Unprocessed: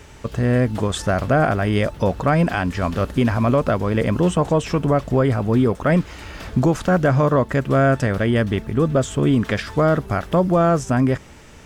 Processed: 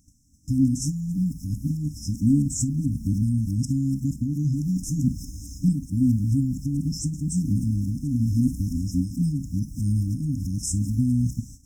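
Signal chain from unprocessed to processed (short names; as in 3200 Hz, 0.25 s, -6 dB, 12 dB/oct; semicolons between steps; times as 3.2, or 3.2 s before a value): whole clip reversed; high shelf 3500 Hz +6.5 dB; gate -39 dBFS, range -18 dB; band shelf 1100 Hz +10 dB 2.6 oct; on a send at -11 dB: reverb, pre-delay 3 ms; on the sum: compressor 2:1, threshold -15 dBFS, peak gain reduction 7.5 dB; FFT band-reject 310–5100 Hz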